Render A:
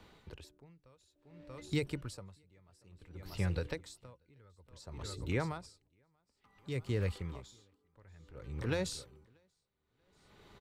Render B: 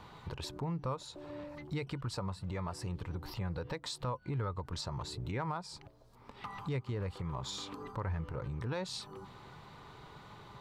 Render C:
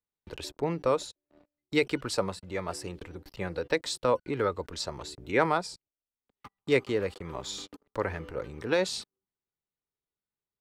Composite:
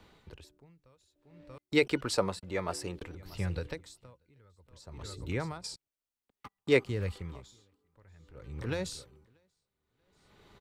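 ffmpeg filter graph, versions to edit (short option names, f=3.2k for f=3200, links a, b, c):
-filter_complex "[2:a]asplit=2[a][b];[0:a]asplit=3[c][d][e];[c]atrim=end=1.582[f];[a]atrim=start=1.578:end=3.152[g];[d]atrim=start=3.148:end=5.642[h];[b]atrim=start=5.638:end=6.852[i];[e]atrim=start=6.848[j];[f][g]acrossfade=d=0.004:c1=hsin:c2=hsin[k];[k][h]acrossfade=d=0.004:c1=hsin:c2=hsin[l];[l][i]acrossfade=d=0.004:c1=hsin:c2=hsin[m];[m][j]acrossfade=d=0.004:c1=hsin:c2=hsin"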